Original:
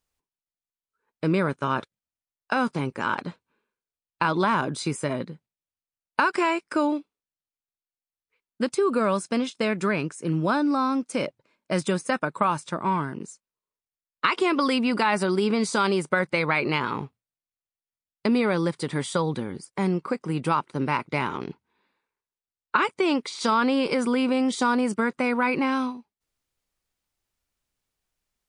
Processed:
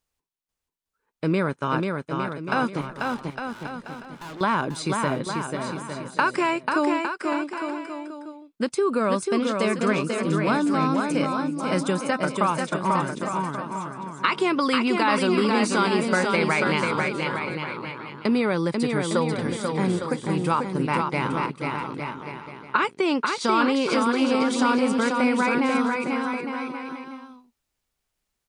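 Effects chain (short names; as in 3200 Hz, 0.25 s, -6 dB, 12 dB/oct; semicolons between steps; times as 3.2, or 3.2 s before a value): 2.81–4.41 tube stage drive 37 dB, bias 0.4; on a send: bouncing-ball echo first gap 0.49 s, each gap 0.75×, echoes 5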